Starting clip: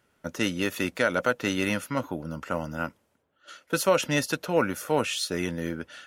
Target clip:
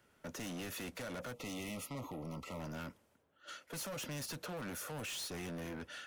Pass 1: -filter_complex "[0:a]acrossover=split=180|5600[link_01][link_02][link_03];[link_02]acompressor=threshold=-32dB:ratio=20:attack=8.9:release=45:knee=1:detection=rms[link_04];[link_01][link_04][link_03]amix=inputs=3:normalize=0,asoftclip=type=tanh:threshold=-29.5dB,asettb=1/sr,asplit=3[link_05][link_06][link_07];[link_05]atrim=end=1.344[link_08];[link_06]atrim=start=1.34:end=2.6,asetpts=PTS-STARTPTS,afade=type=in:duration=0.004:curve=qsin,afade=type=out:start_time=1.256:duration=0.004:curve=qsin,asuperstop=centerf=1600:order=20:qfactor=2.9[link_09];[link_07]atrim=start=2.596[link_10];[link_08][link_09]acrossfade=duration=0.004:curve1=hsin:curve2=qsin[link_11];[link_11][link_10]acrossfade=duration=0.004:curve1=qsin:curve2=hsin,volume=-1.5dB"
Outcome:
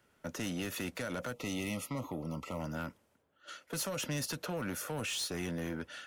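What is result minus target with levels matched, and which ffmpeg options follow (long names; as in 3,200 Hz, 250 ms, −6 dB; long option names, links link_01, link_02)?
soft clipping: distortion −8 dB
-filter_complex "[0:a]acrossover=split=180|5600[link_01][link_02][link_03];[link_02]acompressor=threshold=-32dB:ratio=20:attack=8.9:release=45:knee=1:detection=rms[link_04];[link_01][link_04][link_03]amix=inputs=3:normalize=0,asoftclip=type=tanh:threshold=-39dB,asettb=1/sr,asplit=3[link_05][link_06][link_07];[link_05]atrim=end=1.344[link_08];[link_06]atrim=start=1.34:end=2.6,asetpts=PTS-STARTPTS,afade=type=in:duration=0.004:curve=qsin,afade=type=out:start_time=1.256:duration=0.004:curve=qsin,asuperstop=centerf=1600:order=20:qfactor=2.9[link_09];[link_07]atrim=start=2.596[link_10];[link_08][link_09]acrossfade=duration=0.004:curve1=hsin:curve2=qsin[link_11];[link_11][link_10]acrossfade=duration=0.004:curve1=qsin:curve2=hsin,volume=-1.5dB"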